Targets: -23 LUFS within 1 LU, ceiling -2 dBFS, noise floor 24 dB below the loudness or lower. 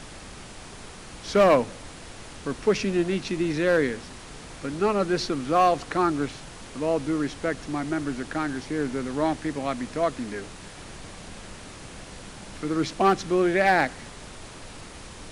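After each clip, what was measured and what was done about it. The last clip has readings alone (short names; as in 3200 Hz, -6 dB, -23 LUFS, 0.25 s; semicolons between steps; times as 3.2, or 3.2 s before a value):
clipped 0.3%; flat tops at -12.5 dBFS; noise floor -43 dBFS; noise floor target -50 dBFS; loudness -25.5 LUFS; peak -12.5 dBFS; loudness target -23.0 LUFS
-> clip repair -12.5 dBFS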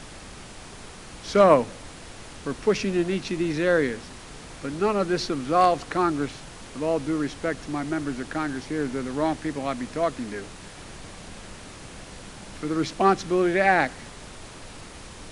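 clipped 0.0%; noise floor -43 dBFS; noise floor target -49 dBFS
-> noise print and reduce 6 dB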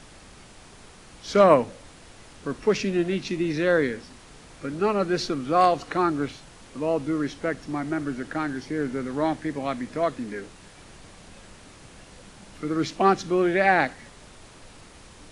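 noise floor -49 dBFS; loudness -25.0 LUFS; peak -4.5 dBFS; loudness target -23.0 LUFS
-> gain +2 dB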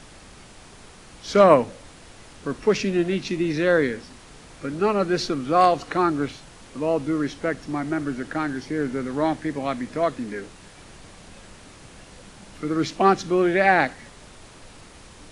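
loudness -23.0 LUFS; peak -2.5 dBFS; noise floor -47 dBFS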